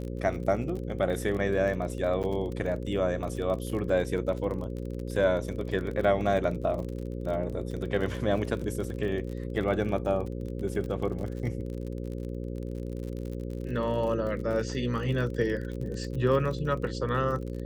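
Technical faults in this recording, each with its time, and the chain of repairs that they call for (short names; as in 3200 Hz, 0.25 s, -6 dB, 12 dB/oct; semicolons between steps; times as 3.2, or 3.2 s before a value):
buzz 60 Hz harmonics 9 -35 dBFS
crackle 40/s -35 dBFS
2.23–2.24 gap 7.6 ms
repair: de-click; de-hum 60 Hz, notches 9; interpolate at 2.23, 7.6 ms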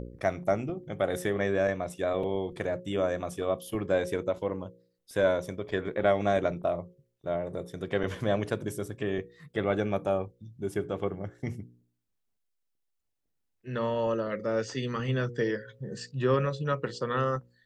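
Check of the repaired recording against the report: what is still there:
none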